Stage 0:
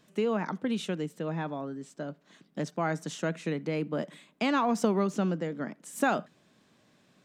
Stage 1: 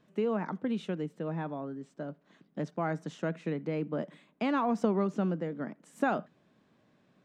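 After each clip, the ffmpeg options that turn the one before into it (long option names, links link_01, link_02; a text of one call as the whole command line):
ffmpeg -i in.wav -af "lowpass=frequency=1600:poles=1,volume=-1.5dB" out.wav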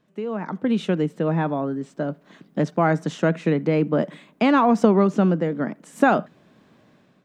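ffmpeg -i in.wav -af "dynaudnorm=framelen=240:gausssize=5:maxgain=13dB" out.wav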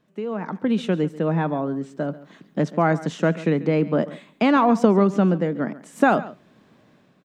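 ffmpeg -i in.wav -af "aecho=1:1:139:0.133" out.wav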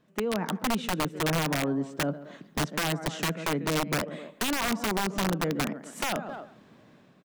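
ffmpeg -i in.wav -filter_complex "[0:a]asplit=2[link_01][link_02];[link_02]adelay=260,highpass=300,lowpass=3400,asoftclip=type=hard:threshold=-12.5dB,volume=-21dB[link_03];[link_01][link_03]amix=inputs=2:normalize=0,acompressor=threshold=-23dB:ratio=16,aeval=exprs='(mod(11.2*val(0)+1,2)-1)/11.2':channel_layout=same" out.wav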